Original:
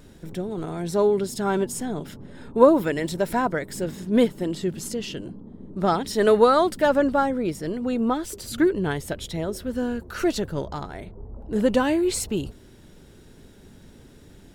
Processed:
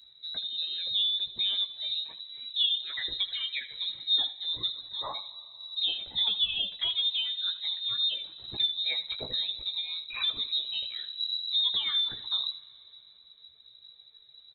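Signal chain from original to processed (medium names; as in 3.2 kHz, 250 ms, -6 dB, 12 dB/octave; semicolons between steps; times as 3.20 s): expander on every frequency bin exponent 1.5; compression 4:1, threshold -34 dBFS, peak gain reduction 19.5 dB; touch-sensitive flanger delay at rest 5.2 ms, full sweep at -30.5 dBFS; frequency inversion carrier 3.9 kHz; early reflections 16 ms -6.5 dB, 79 ms -14.5 dB; plate-style reverb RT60 3.2 s, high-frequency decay 0.9×, DRR 18 dB; trim +6 dB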